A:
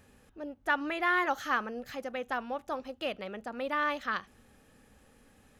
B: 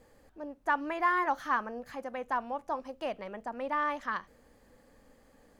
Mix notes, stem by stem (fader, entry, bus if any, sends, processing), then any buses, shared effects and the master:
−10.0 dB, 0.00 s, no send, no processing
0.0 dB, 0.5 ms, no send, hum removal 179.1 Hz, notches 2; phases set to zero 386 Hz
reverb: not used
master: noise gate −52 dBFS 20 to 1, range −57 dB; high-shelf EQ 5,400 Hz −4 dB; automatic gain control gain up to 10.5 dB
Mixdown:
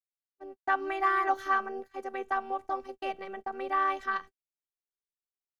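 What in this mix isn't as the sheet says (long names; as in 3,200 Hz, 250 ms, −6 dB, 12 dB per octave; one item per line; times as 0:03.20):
stem A −10.0 dB → −20.5 dB
stem B 0.0 dB → −6.0 dB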